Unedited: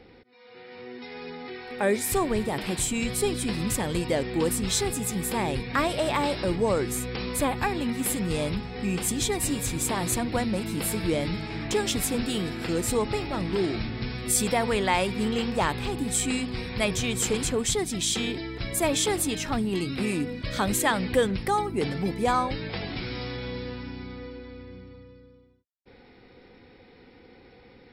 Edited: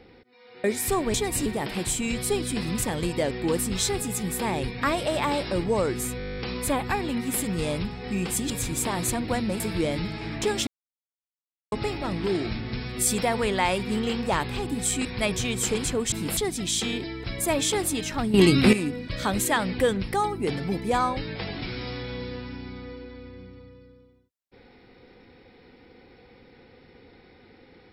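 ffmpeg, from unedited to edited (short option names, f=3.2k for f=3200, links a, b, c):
-filter_complex "[0:a]asplit=23[a][b][c][d][e][f][g][h][i][j][k][l][m][n][o][p][q][r][s][t][u][v][w];[a]atrim=end=0.642[x];[b]atrim=start=1.878:end=2.382[y];[c]atrim=start=9.218:end=9.542[z];[d]atrim=start=2.378:end=7.122[aa];[e]atrim=start=7.098:end=7.122[ab];[f]atrim=start=7.098:end=7.122[ac];[g]atrim=start=7.098:end=7.122[ad];[h]atrim=start=7.098:end=7.122[ae];[i]atrim=start=7.098:end=7.122[af];[j]atrim=start=7.098:end=7.122[ag];[k]atrim=start=7.098:end=7.122[ah];[l]atrim=start=7.098:end=7.122[ai];[m]atrim=start=7.098:end=7.122[aj];[n]atrim=start=7.098:end=9.222[ak];[o]atrim=start=9.538:end=10.642[al];[p]atrim=start=10.888:end=11.96,asetpts=PTS-STARTPTS,afade=t=out:st=1.068:d=0.004:c=hsin[am];[q]atrim=start=11.96:end=13.01,asetpts=PTS-STARTPTS,volume=0[an];[r]atrim=start=13.01:end=16.342,asetpts=PTS-STARTPTS,afade=t=in:d=0.004:c=hsin[ao];[s]atrim=start=16.638:end=17.712[ap];[t]atrim=start=10.638:end=10.892[aq];[u]atrim=start=17.708:end=19.682[ar];[v]atrim=start=19.678:end=20.072,asetpts=PTS-STARTPTS,volume=11.5dB[as];[w]atrim=start=20.068[at];[x][y]acrossfade=d=0.004:c1=hsin:c2=hsin[au];[au][z]acrossfade=d=0.004:c1=hsin:c2=hsin[av];[av][aa]acrossfade=d=0.004:c1=hsin:c2=hsin[aw];[aw][ab]acrossfade=d=0.004:c1=hsin:c2=hsin[ax];[ax][ac]acrossfade=d=0.004:c1=hsin:c2=hsin[ay];[ay][ad]acrossfade=d=0.004:c1=hsin:c2=hsin[az];[az][ae]acrossfade=d=0.004:c1=hsin:c2=hsin[ba];[ba][af]acrossfade=d=0.004:c1=hsin:c2=hsin[bb];[bb][ag]acrossfade=d=0.004:c1=hsin:c2=hsin[bc];[bc][ah]acrossfade=d=0.004:c1=hsin:c2=hsin[bd];[bd][ai]acrossfade=d=0.004:c1=hsin:c2=hsin[be];[be][aj]acrossfade=d=0.004:c1=hsin:c2=hsin[bf];[bf][ak]acrossfade=d=0.004:c1=hsin:c2=hsin[bg];[bg][al]acrossfade=d=0.004:c1=hsin:c2=hsin[bh];[am][an][ao]concat=n=3:v=0:a=1[bi];[bh][bi]acrossfade=d=0.004:c1=hsin:c2=hsin[bj];[bj][ap]acrossfade=d=0.004:c1=hsin:c2=hsin[bk];[bk][aq]acrossfade=d=0.004:c1=hsin:c2=hsin[bl];[bl][ar]acrossfade=d=0.004:c1=hsin:c2=hsin[bm];[bm][as]acrossfade=d=0.004:c1=hsin:c2=hsin[bn];[bn][at]acrossfade=d=0.004:c1=hsin:c2=hsin"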